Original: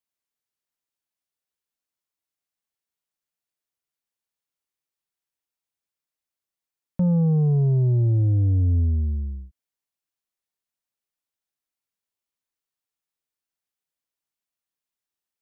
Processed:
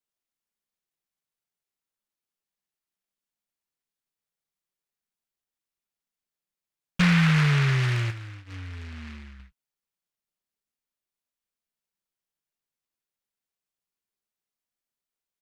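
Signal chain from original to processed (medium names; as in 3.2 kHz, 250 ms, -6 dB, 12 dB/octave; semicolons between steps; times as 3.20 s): comb 5.1 ms, depth 98%; 8.10–9.40 s: compression 3:1, threshold -34 dBFS, peak gain reduction 9 dB; flange 0.18 Hz, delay 3 ms, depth 7.8 ms, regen +26%; delay time shaken by noise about 1.8 kHz, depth 0.39 ms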